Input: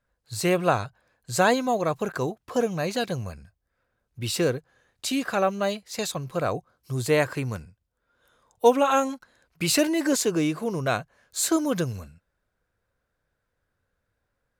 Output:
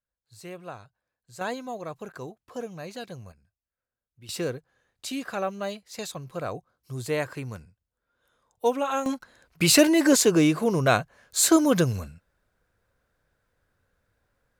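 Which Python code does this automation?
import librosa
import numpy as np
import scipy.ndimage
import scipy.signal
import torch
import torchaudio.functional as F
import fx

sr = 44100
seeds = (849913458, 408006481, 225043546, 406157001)

y = fx.gain(x, sr, db=fx.steps((0.0, -18.0), (1.41, -11.0), (3.32, -18.0), (4.29, -6.0), (9.06, 4.5)))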